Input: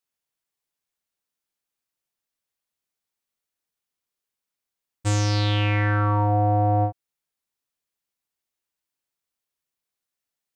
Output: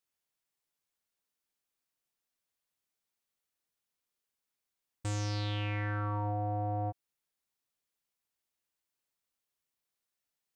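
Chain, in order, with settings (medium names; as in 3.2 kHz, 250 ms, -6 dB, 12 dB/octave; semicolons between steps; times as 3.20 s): peak limiter -24.5 dBFS, peak gain reduction 11.5 dB; trim -2 dB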